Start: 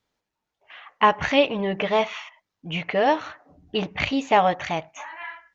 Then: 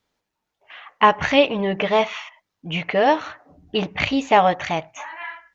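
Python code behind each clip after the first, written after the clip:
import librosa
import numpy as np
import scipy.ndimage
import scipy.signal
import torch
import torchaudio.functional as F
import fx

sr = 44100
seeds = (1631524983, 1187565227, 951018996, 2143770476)

y = fx.hum_notches(x, sr, base_hz=60, count=2)
y = F.gain(torch.from_numpy(y), 3.0).numpy()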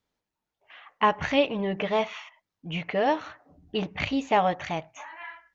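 y = fx.low_shelf(x, sr, hz=340.0, db=4.0)
y = F.gain(torch.from_numpy(y), -8.0).numpy()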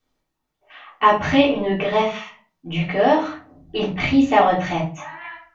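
y = fx.room_shoebox(x, sr, seeds[0], volume_m3=200.0, walls='furnished', distance_m=3.5)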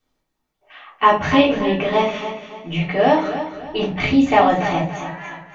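y = fx.echo_feedback(x, sr, ms=285, feedback_pct=36, wet_db=-10.5)
y = F.gain(torch.from_numpy(y), 1.0).numpy()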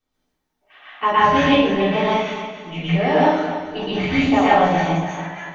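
y = fx.rev_plate(x, sr, seeds[1], rt60_s=0.55, hf_ratio=0.9, predelay_ms=105, drr_db=-6.5)
y = F.gain(torch.from_numpy(y), -6.5).numpy()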